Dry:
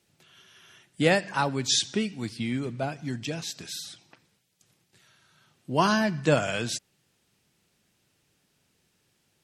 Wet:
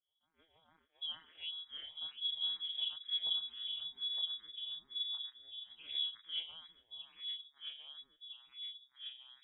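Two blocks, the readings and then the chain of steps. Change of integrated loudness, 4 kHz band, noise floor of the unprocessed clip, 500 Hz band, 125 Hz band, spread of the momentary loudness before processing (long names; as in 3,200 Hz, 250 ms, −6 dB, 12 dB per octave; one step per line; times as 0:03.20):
−12.0 dB, −1.5 dB, −72 dBFS, below −40 dB, below −40 dB, 11 LU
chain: gate on every frequency bin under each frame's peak −20 dB strong
notch filter 640 Hz, Q 12
noise gate −56 dBFS, range −12 dB
high-shelf EQ 2,300 Hz +12 dB
reversed playback
downward compressor 10 to 1, threshold −34 dBFS, peak gain reduction 23 dB
reversed playback
chorus effect 0.62 Hz, delay 19.5 ms, depth 6.2 ms
hollow resonant body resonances 250/510/2,700 Hz, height 15 dB, ringing for 25 ms
channel vocoder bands 16, square 80.9 Hz
rotating-speaker cabinet horn 6.7 Hz
delay with pitch and tempo change per echo 514 ms, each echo −2 semitones, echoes 3
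voice inversion scrambler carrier 3,600 Hz
frequency shifter mixed with the dry sound +2.2 Hz
level −6.5 dB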